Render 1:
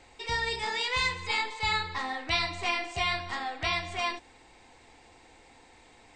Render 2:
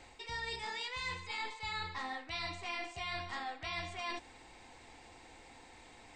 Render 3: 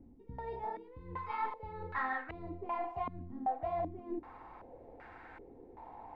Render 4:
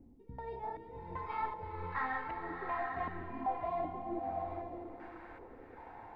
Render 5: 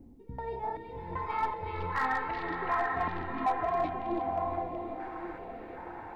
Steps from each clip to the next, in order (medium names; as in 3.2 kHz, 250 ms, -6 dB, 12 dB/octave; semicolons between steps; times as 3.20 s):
peaking EQ 440 Hz -2.5 dB 0.36 oct; reverse; compression 6:1, threshold -38 dBFS, peak gain reduction 14 dB; reverse
step-sequenced low-pass 2.6 Hz 250–1500 Hz; trim +1.5 dB
swelling reverb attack 850 ms, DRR 2 dB; trim -1.5 dB
overload inside the chain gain 29 dB; repeats whose band climbs or falls 373 ms, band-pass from 3.2 kHz, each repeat -1.4 oct, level -1 dB; trim +6 dB